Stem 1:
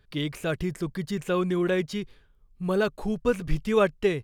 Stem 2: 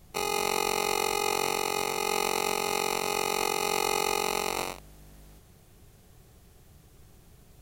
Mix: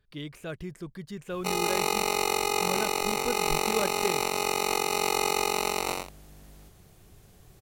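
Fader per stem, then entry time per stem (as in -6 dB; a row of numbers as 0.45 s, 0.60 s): -9.0 dB, +1.0 dB; 0.00 s, 1.30 s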